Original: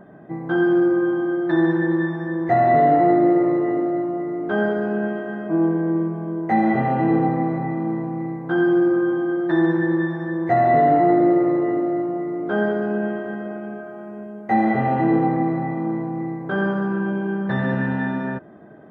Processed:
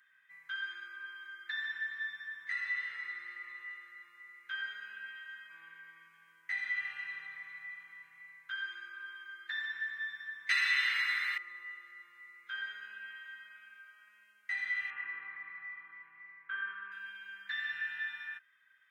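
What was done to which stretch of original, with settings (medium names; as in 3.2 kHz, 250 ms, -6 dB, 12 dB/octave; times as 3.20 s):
10.49–11.38 s: spectrum-flattening compressor 2:1
14.90–16.92 s: cabinet simulation 120–2500 Hz, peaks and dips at 260 Hz +8 dB, 390 Hz +7 dB, 610 Hz -4 dB, 1.1 kHz +8 dB
whole clip: inverse Chebyshev high-pass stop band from 760 Hz, stop band 50 dB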